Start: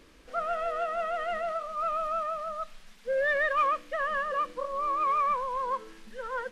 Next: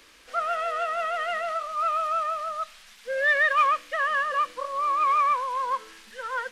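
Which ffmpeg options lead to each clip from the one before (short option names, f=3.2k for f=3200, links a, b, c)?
-filter_complex "[0:a]tiltshelf=f=630:g=-9,acrossover=split=150|3400[a][b][c];[a]alimiter=level_in=32.5dB:limit=-24dB:level=0:latency=1:release=38,volume=-32.5dB[d];[d][b][c]amix=inputs=3:normalize=0"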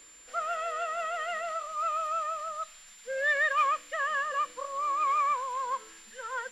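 -af "aeval=exprs='val(0)+0.00447*sin(2*PI*7200*n/s)':c=same,volume=-5dB"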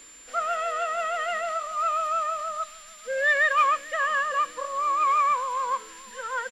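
-filter_complex "[0:a]equalizer=f=260:w=4.7:g=4.5,asplit=2[a][b];[b]adelay=437.3,volume=-20dB,highshelf=f=4k:g=-9.84[c];[a][c]amix=inputs=2:normalize=0,volume=5dB"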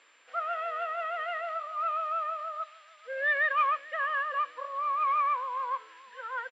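-af "asuperpass=centerf=1300:order=4:qfactor=0.51,volume=-5dB"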